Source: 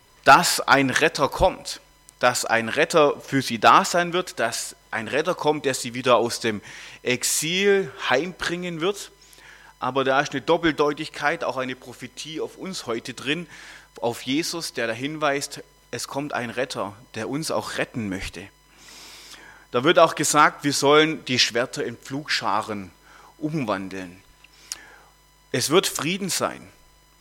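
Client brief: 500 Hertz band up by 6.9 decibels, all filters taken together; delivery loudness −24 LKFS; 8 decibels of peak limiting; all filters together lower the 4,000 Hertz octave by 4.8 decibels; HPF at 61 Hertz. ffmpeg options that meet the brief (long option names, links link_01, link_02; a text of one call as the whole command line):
ffmpeg -i in.wav -af "highpass=61,equalizer=frequency=500:width_type=o:gain=8.5,equalizer=frequency=4000:width_type=o:gain=-6.5,volume=-3.5dB,alimiter=limit=-8.5dB:level=0:latency=1" out.wav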